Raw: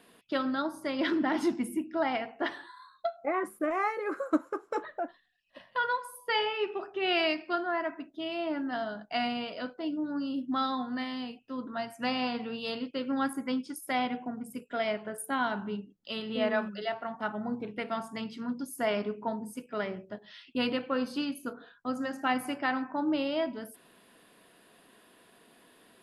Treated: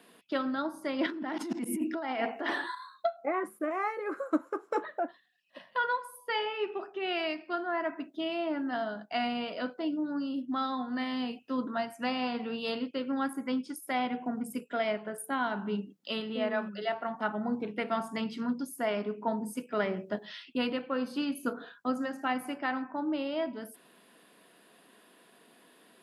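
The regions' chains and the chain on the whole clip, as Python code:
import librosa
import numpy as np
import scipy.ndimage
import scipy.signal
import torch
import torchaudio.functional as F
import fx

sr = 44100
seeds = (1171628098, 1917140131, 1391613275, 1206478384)

y = fx.chain(x, sr, fx.highpass(hz=190.0, slope=24),
    fx.over_compress(threshold_db=-37.0, ratio=-1.0),
    fx.auto_swell(attack_ms=104.0), at=(1.06, 2.75))
y = scipy.signal.sosfilt(scipy.signal.butter(4, 150.0, 'highpass', fs=sr, output='sos'), y)
y = fx.dynamic_eq(y, sr, hz=5800.0, q=0.71, threshold_db=-50.0, ratio=4.0, max_db=-4)
y = fx.rider(y, sr, range_db=10, speed_s=0.5)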